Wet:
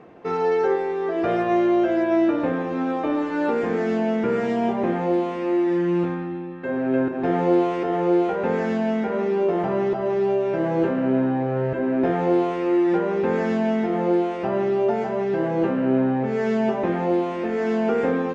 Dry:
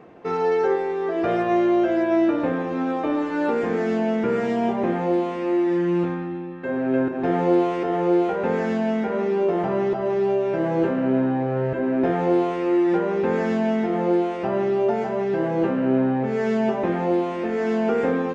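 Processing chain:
Bessel low-pass filter 10,000 Hz

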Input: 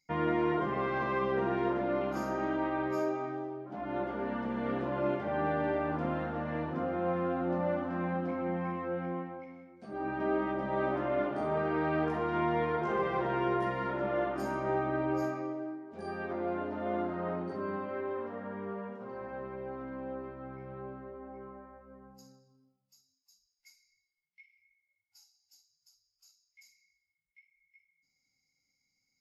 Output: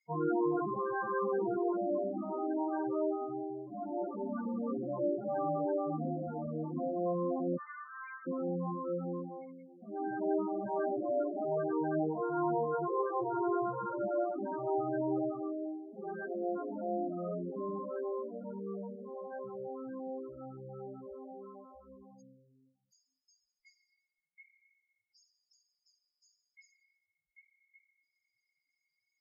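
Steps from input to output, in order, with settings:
0:07.57–0:08.27: Chebyshev band-pass filter 1,100–3,500 Hz, order 4
spectral peaks only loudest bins 8

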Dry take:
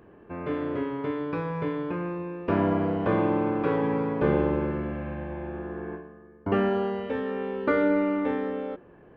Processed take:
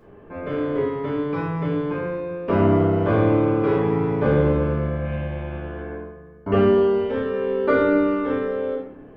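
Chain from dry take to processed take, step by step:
0:05.05–0:05.82: parametric band 2,900 Hz +9 dB 0.82 octaves
convolution reverb RT60 0.60 s, pre-delay 5 ms, DRR −5 dB
level −1.5 dB

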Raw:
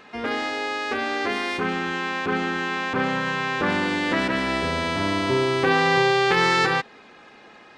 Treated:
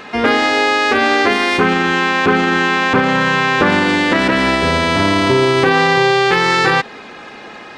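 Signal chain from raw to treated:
boost into a limiter +15 dB
level −1 dB

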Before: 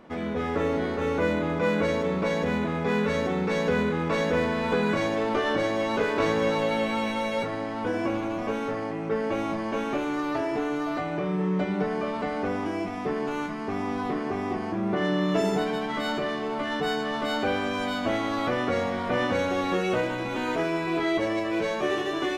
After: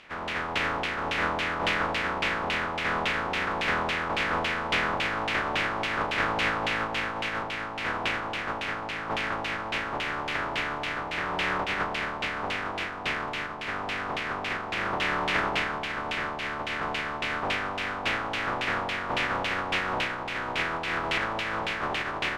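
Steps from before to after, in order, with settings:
compressing power law on the bin magnitudes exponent 0.11
auto-filter low-pass saw down 3.6 Hz 790–2,900 Hz

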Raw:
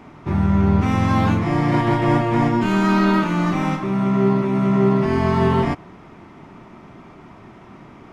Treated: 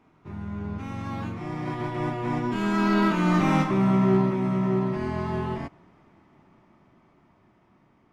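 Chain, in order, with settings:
source passing by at 0:03.63, 13 m/s, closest 6 metres
hard clipping −13 dBFS, distortion −32 dB

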